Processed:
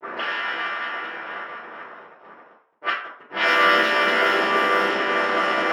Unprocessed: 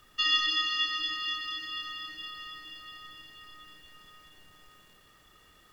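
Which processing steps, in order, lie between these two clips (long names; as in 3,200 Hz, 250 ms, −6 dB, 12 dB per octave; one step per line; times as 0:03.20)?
channel vocoder with a chord as carrier major triad, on C3
Butterworth high-pass 200 Hz 72 dB per octave
delay with a low-pass on its return 75 ms, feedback 32%, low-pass 2,500 Hz, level −12 dB
dynamic equaliser 1,600 Hz, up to +4 dB, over −45 dBFS, Q 1.5
in parallel at −1.5 dB: downward compressor 5 to 1, threshold −36 dBFS, peak gain reduction 14 dB
on the sum: leveller curve on the samples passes 1
reversed playback
upward compression, threshold −34 dBFS
reversed playback
gate with flip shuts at −26 dBFS, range −27 dB
pitch-shifted copies added −12 semitones −11 dB, +7 semitones −3 dB
bit-depth reduction 8 bits, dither none
convolution reverb RT60 0.60 s, pre-delay 3 ms, DRR −11.5 dB
low-pass that shuts in the quiet parts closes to 830 Hz, open at −21.5 dBFS
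level +6.5 dB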